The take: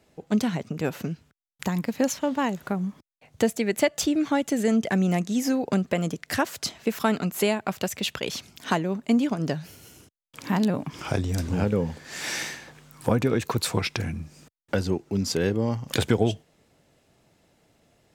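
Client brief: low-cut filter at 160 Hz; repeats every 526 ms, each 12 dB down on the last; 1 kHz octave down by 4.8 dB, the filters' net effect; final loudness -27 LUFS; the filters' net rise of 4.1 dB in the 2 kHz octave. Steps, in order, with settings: high-pass 160 Hz; peaking EQ 1 kHz -8.5 dB; peaking EQ 2 kHz +7.5 dB; feedback delay 526 ms, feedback 25%, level -12 dB; trim +0.5 dB

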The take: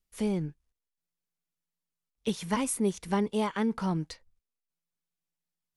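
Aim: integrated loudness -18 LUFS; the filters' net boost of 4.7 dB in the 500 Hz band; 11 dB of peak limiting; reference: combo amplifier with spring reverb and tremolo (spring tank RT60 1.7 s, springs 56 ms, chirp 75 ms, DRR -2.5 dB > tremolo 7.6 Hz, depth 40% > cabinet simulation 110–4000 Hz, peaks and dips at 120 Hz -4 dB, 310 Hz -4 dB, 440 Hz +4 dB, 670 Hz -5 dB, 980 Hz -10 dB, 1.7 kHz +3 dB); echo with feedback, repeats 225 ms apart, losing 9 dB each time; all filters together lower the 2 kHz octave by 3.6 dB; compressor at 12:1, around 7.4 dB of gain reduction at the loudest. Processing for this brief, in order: peaking EQ 500 Hz +4 dB; peaking EQ 2 kHz -6 dB; compression 12:1, threshold -29 dBFS; peak limiter -31 dBFS; feedback delay 225 ms, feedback 35%, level -9 dB; spring tank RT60 1.7 s, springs 56 ms, chirp 75 ms, DRR -2.5 dB; tremolo 7.6 Hz, depth 40%; cabinet simulation 110–4000 Hz, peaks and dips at 120 Hz -4 dB, 310 Hz -4 dB, 440 Hz +4 dB, 670 Hz -5 dB, 980 Hz -10 dB, 1.7 kHz +3 dB; trim +20 dB

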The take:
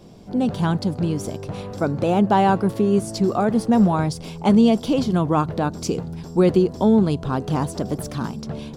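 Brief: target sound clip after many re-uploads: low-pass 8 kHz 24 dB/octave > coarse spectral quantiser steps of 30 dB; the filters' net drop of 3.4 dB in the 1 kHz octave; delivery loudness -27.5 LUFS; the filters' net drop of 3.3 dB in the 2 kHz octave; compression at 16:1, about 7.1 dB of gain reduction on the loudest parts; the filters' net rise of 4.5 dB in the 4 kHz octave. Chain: peaking EQ 1 kHz -4 dB; peaking EQ 2 kHz -5 dB; peaking EQ 4 kHz +7.5 dB; compression 16:1, threshold -18 dBFS; low-pass 8 kHz 24 dB/octave; coarse spectral quantiser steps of 30 dB; trim -1.5 dB

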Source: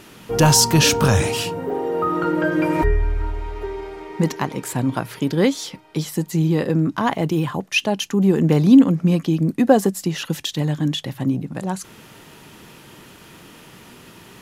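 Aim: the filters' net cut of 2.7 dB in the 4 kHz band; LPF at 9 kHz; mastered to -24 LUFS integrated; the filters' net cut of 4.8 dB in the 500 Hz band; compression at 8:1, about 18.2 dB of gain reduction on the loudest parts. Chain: low-pass 9 kHz; peaking EQ 500 Hz -6 dB; peaking EQ 4 kHz -3.5 dB; compression 8:1, threshold -27 dBFS; trim +7.5 dB

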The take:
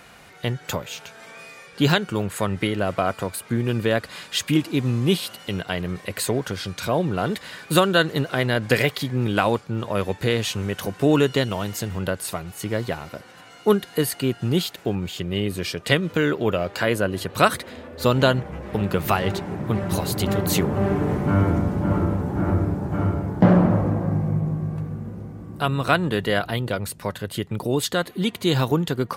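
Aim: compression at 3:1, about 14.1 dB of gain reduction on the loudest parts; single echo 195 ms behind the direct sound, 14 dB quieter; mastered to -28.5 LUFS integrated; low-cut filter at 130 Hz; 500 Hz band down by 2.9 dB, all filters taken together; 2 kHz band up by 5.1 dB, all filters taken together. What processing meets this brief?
high-pass 130 Hz; peaking EQ 500 Hz -4 dB; peaking EQ 2 kHz +7 dB; compression 3:1, threshold -31 dBFS; delay 195 ms -14 dB; trim +4.5 dB

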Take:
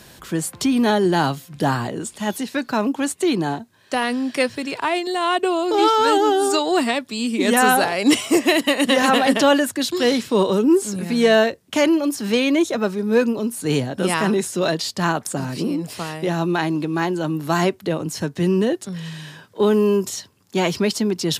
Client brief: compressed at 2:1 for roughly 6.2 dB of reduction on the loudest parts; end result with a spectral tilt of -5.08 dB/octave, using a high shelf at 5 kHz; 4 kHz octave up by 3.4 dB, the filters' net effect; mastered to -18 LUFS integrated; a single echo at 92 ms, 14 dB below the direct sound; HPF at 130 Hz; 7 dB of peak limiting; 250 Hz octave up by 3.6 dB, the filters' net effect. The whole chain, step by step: high-pass 130 Hz; peaking EQ 250 Hz +5 dB; peaking EQ 4 kHz +8 dB; treble shelf 5 kHz -8.5 dB; compression 2:1, threshold -19 dBFS; peak limiter -13 dBFS; delay 92 ms -14 dB; trim +4.5 dB

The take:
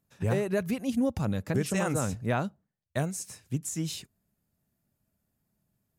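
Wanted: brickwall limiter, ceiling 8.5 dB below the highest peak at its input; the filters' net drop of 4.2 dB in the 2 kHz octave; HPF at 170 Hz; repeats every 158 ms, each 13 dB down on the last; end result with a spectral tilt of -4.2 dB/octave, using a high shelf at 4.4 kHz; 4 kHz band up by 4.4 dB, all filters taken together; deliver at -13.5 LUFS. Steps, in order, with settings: high-pass 170 Hz; peaking EQ 2 kHz -8 dB; peaking EQ 4 kHz +3 dB; treble shelf 4.4 kHz +8 dB; peak limiter -23 dBFS; feedback delay 158 ms, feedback 22%, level -13 dB; trim +20 dB

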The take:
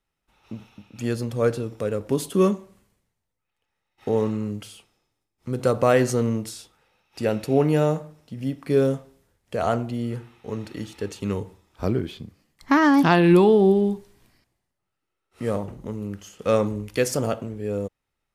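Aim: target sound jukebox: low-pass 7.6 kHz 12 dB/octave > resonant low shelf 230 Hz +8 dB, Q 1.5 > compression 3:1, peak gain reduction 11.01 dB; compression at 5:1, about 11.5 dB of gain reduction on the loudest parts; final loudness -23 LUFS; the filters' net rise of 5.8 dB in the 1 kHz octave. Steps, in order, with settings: peaking EQ 1 kHz +8 dB; compression 5:1, threshold -24 dBFS; low-pass 7.6 kHz 12 dB/octave; resonant low shelf 230 Hz +8 dB, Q 1.5; compression 3:1, threshold -32 dBFS; trim +12 dB

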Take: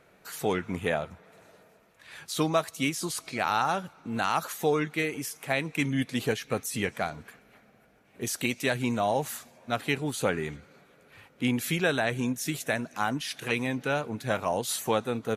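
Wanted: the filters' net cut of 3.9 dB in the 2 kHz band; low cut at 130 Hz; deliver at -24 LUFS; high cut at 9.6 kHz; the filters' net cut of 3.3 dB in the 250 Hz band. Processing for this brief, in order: high-pass 130 Hz; low-pass 9.6 kHz; peaking EQ 250 Hz -3.5 dB; peaking EQ 2 kHz -5 dB; trim +7.5 dB

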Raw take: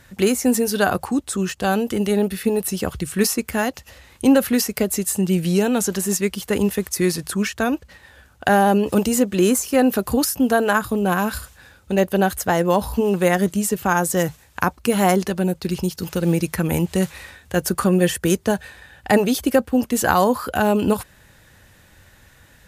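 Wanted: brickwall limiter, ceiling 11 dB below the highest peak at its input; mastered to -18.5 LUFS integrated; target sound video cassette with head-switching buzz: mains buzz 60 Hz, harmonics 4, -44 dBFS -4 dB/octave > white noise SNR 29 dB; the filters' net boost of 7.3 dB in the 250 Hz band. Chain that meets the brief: peaking EQ 250 Hz +9 dB; peak limiter -9 dBFS; mains buzz 60 Hz, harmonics 4, -44 dBFS -4 dB/octave; white noise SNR 29 dB; trim +0.5 dB

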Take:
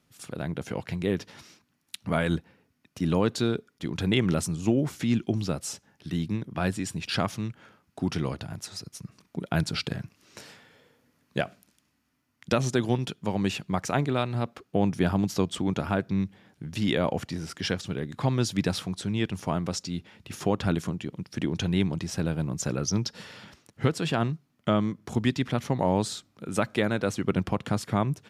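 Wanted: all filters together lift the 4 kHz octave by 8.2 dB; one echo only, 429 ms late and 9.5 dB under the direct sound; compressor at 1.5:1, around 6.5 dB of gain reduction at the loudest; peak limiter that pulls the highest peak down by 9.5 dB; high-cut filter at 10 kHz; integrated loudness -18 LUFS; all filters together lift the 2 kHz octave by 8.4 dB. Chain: low-pass 10 kHz; peaking EQ 2 kHz +9 dB; peaking EQ 4 kHz +7.5 dB; compression 1.5:1, threshold -33 dBFS; peak limiter -18.5 dBFS; delay 429 ms -9.5 dB; trim +15 dB

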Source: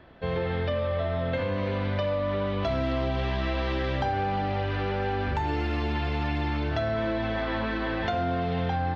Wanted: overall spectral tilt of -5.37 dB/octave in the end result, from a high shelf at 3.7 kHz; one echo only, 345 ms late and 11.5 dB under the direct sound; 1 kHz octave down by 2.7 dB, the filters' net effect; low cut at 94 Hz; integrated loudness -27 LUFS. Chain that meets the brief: high-pass 94 Hz; peaking EQ 1 kHz -3.5 dB; treble shelf 3.7 kHz -4.5 dB; delay 345 ms -11.5 dB; trim +3 dB

